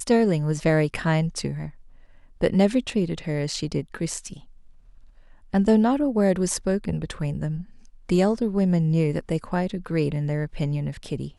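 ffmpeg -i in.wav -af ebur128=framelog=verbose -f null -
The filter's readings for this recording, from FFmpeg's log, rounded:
Integrated loudness:
  I:         -24.2 LUFS
  Threshold: -34.9 LUFS
Loudness range:
  LRA:         3.2 LU
  Threshold: -45.0 LUFS
  LRA low:   -26.8 LUFS
  LRA high:  -23.6 LUFS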